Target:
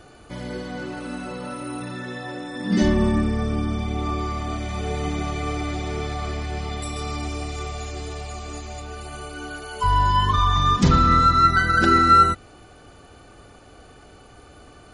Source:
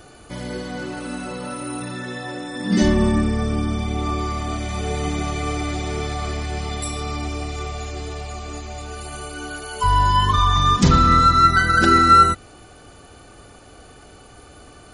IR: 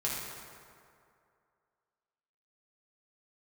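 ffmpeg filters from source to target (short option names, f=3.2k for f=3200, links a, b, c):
-af "asetnsamples=n=441:p=0,asendcmd='6.96 highshelf g 3;8.8 highshelf g -9',highshelf=f=7.2k:g=-9.5,volume=-2dB"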